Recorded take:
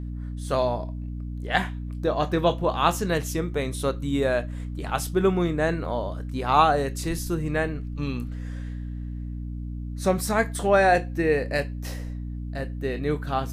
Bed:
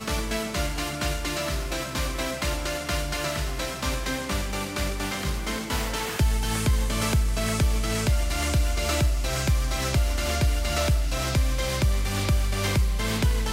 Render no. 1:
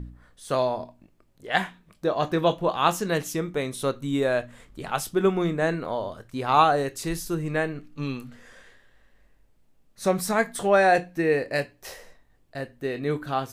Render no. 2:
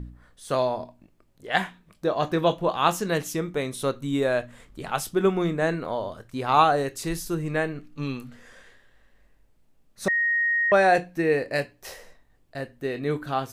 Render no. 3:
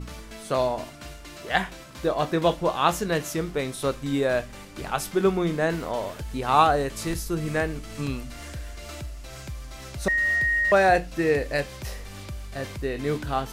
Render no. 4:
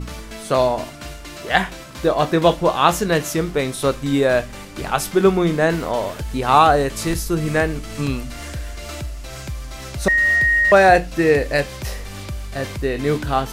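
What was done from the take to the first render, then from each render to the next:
de-hum 60 Hz, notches 5
10.08–10.72 s: bleep 1.87 kHz -20 dBFS
add bed -13.5 dB
trim +7 dB; peak limiter -1 dBFS, peak gain reduction 3 dB

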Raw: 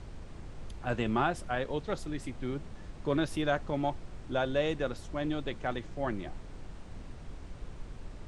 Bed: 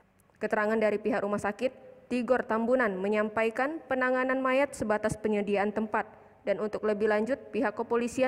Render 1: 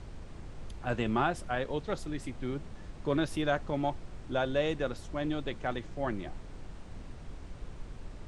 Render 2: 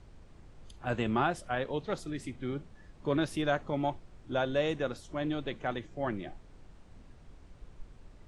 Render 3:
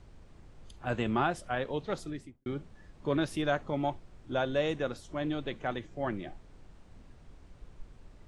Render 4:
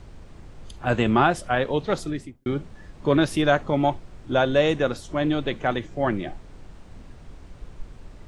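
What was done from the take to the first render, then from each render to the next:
no audible change
noise print and reduce 9 dB
2.02–2.46 s: studio fade out
trim +10 dB

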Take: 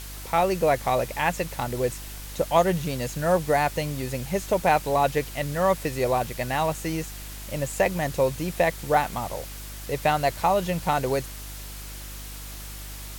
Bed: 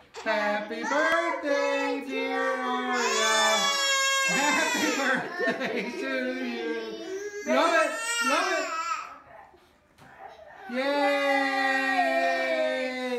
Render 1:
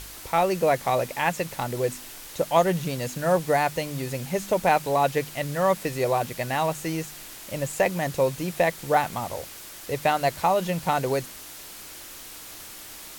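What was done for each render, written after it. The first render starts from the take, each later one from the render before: de-hum 50 Hz, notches 5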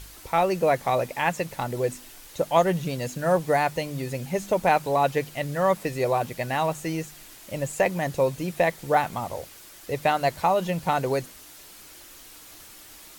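noise reduction 6 dB, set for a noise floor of -42 dBFS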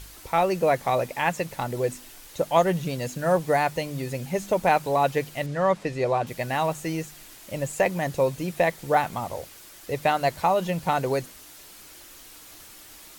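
5.46–6.27 s: distance through air 71 m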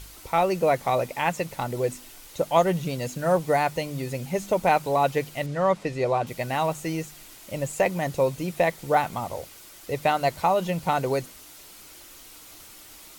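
band-stop 1.7 kHz, Q 13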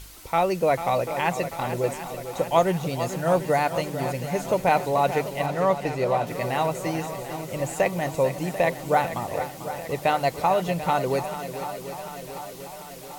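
shuffle delay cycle 740 ms, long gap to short 1.5:1, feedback 59%, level -11 dB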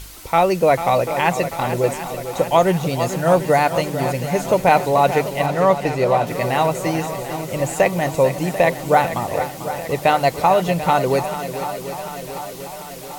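trim +6.5 dB; peak limiter -3 dBFS, peak gain reduction 2.5 dB

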